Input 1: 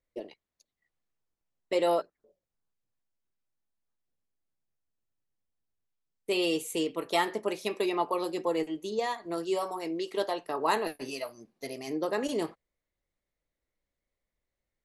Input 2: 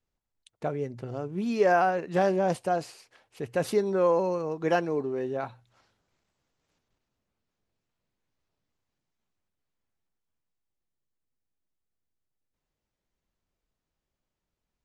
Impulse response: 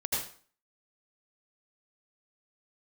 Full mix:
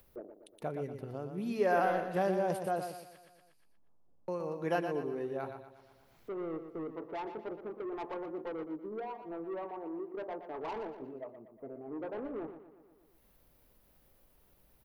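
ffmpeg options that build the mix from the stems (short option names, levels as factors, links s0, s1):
-filter_complex "[0:a]lowpass=f=1000:w=0.5412,lowpass=f=1000:w=1.3066,asoftclip=type=tanh:threshold=0.0282,volume=0.596,asplit=2[s0][s1];[s1]volume=0.316[s2];[1:a]aexciter=amount=7.8:drive=7.4:freq=10000,volume=0.447,asplit=3[s3][s4][s5];[s3]atrim=end=3.18,asetpts=PTS-STARTPTS,afade=t=out:st=3.176:d=0.004:c=hsin[s6];[s4]atrim=start=3.18:end=4.28,asetpts=PTS-STARTPTS,volume=0[s7];[s5]atrim=start=4.28,asetpts=PTS-STARTPTS,afade=t=in:d=0.004:c=hsin[s8];[s6][s7][s8]concat=n=3:v=0:a=1,asplit=2[s9][s10];[s10]volume=0.422[s11];[s2][s11]amix=inputs=2:normalize=0,aecho=0:1:119|238|357|476|595|714:1|0.4|0.16|0.064|0.0256|0.0102[s12];[s0][s9][s12]amix=inputs=3:normalize=0,highshelf=f=9200:g=-11,acompressor=mode=upward:threshold=0.00447:ratio=2.5"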